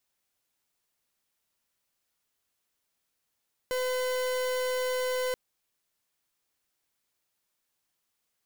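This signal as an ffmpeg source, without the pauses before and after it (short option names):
-f lavfi -i "aevalsrc='0.0335*(2*lt(mod(507*t,1),0.41)-1)':d=1.63:s=44100"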